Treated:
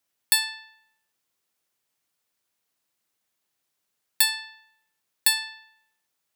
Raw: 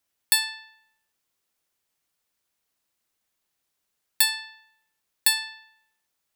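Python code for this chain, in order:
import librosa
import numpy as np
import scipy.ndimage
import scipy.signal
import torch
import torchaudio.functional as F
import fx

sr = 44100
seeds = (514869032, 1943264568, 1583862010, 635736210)

y = scipy.signal.sosfilt(scipy.signal.butter(2, 82.0, 'highpass', fs=sr, output='sos'), x)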